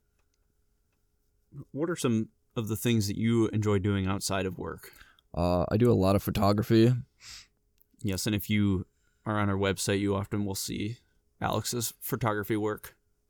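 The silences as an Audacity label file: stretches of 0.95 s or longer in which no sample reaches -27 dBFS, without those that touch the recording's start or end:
6.960000	8.050000	silence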